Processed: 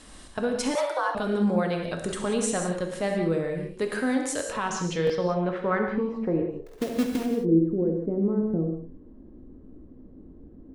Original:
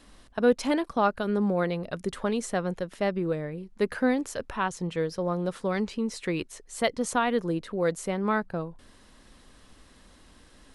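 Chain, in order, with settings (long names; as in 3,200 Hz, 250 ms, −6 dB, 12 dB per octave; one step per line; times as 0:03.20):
0:03.82–0:04.57: low-shelf EQ 140 Hz −10.5 dB
in parallel at −3 dB: downward compressor, threshold −42 dBFS, peak gain reduction 23.5 dB
on the sum: brickwall limiter −19 dBFS, peak gain reduction 9.5 dB
low-pass filter sweep 8,900 Hz → 330 Hz, 0:04.48–0:06.87
flutter between parallel walls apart 11.5 metres, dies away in 0.27 s
0:06.66–0:07.26: log-companded quantiser 4 bits
reverb whose tail is shaped and stops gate 210 ms flat, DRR 2 dB
0:00.75–0:01.15: frequency shifter +280 Hz
buffer that repeats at 0:04.37/0:05.05, samples 1,024, times 1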